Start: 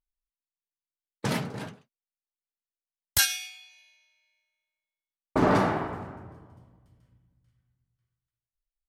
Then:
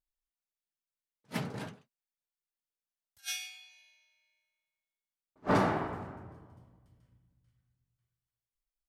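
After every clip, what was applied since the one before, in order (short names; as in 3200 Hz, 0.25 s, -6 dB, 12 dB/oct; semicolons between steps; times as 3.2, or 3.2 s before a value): attack slew limiter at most 460 dB/s; gain -3.5 dB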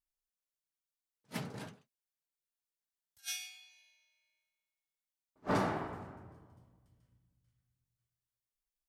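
tone controls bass 0 dB, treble +4 dB; gain -5 dB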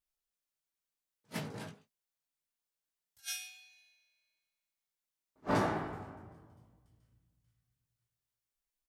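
doubler 19 ms -5 dB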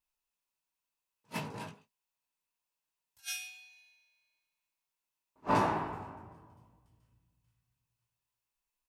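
small resonant body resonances 970/2600 Hz, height 11 dB, ringing for 20 ms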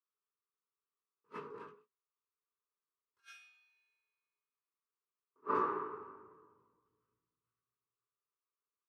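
double band-pass 710 Hz, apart 1.5 oct; gain +4.5 dB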